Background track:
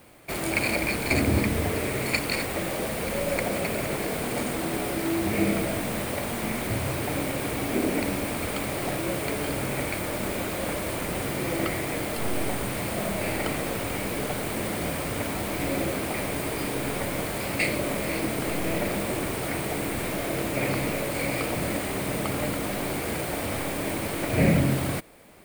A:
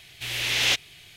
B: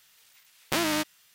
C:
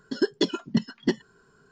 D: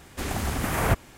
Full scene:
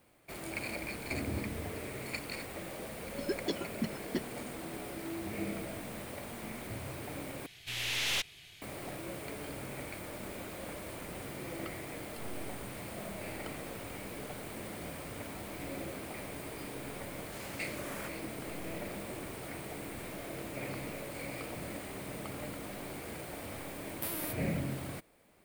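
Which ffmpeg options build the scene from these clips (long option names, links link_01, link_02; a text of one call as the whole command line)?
ffmpeg -i bed.wav -i cue0.wav -i cue1.wav -i cue2.wav -i cue3.wav -filter_complex "[0:a]volume=-13.5dB[link_01];[1:a]aeval=exprs='(tanh(17.8*val(0)+0.4)-tanh(0.4))/17.8':channel_layout=same[link_02];[4:a]highpass=1200[link_03];[2:a]aexciter=amount=9.2:drive=4.4:freq=9200[link_04];[link_01]asplit=2[link_05][link_06];[link_05]atrim=end=7.464[link_07];[link_02]atrim=end=1.16,asetpts=PTS-STARTPTS,volume=-4dB[link_08];[link_06]atrim=start=8.616[link_09];[3:a]atrim=end=1.71,asetpts=PTS-STARTPTS,volume=-11.5dB,afade=type=in:duration=0.004:curve=hsin,afade=type=out:start_time=1.706:duration=0.004:curve=hsin,adelay=3070[link_10];[link_03]atrim=end=1.17,asetpts=PTS-STARTPTS,volume=-15.5dB,afade=type=in:duration=0.004:curve=hsin,afade=type=out:start_time=1.166:duration=0.004:curve=hsin,adelay=17140[link_11];[link_04]atrim=end=1.34,asetpts=PTS-STARTPTS,volume=-18dB,afade=type=in:duration=0.004:curve=hsin,afade=type=out:start_time=1.336:duration=0.004:curve=hsin,adelay=23300[link_12];[link_07][link_08]acrossfade=duration=0.004:curve1=hsin:curve2=hsin[link_13];[link_13][link_09]acrossfade=duration=0.004:curve1=hsin:curve2=hsin[link_14];[link_14][link_10][link_11][link_12]amix=inputs=4:normalize=0" out.wav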